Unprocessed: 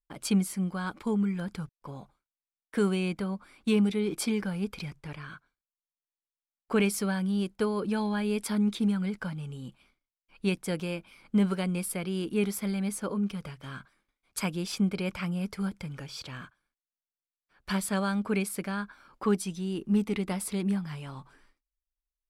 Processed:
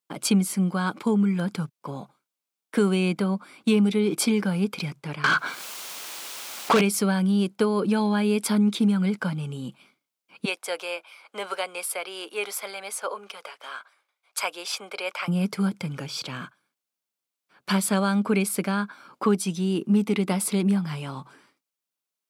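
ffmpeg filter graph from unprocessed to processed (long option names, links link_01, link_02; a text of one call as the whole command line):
ffmpeg -i in.wav -filter_complex "[0:a]asettb=1/sr,asplit=3[link_01][link_02][link_03];[link_01]atrim=end=5.244[link_04];[link_02]atrim=start=5.24:end=6.81,asetpts=PTS-STARTPTS,afade=type=in:duration=0.004:curve=qsin,afade=type=out:start_time=1.566:duration=0.004:curve=qsin,acompressor=mode=upward:threshold=-40dB:ratio=2.5:attack=3.2:release=140:knee=2.83:detection=peak,asplit=2[link_05][link_06];[link_06]highpass=frequency=720:poles=1,volume=31dB,asoftclip=type=tanh:threshold=-15.5dB[link_07];[link_05][link_07]amix=inputs=2:normalize=0,lowpass=frequency=5200:poles=1,volume=-6dB[link_08];[link_03]atrim=start=6.806[link_09];[link_04][link_08]acrossfade=duration=0.004:curve1=hsin:curve2=qsin[link_10];[link_10][link_09]acrossfade=duration=0.004:curve1=qsin:curve2=hsin,asettb=1/sr,asplit=3[link_11][link_12][link_13];[link_11]atrim=end=10.454[link_14];[link_12]atrim=start=10.45:end=15.28,asetpts=PTS-STARTPTS,afade=type=in:duration=0.004:curve=qsin,afade=type=out:start_time=4.826:duration=0.004:curve=qsin,highpass=frequency=550:width=0.5412,highpass=frequency=550:width=1.3066,highshelf=frequency=4900:gain=-4.5[link_15];[link_13]atrim=start=15.276[link_16];[link_14][link_15]acrossfade=duration=0.004:curve1=hsin:curve2=qsin[link_17];[link_17][link_16]acrossfade=duration=0.004:curve1=qsin:curve2=hsin,highpass=frequency=140:width=0.5412,highpass=frequency=140:width=1.3066,equalizer=frequency=1800:width_type=o:width=0.23:gain=-5.5,acompressor=threshold=-28dB:ratio=2,volume=8.5dB" out.wav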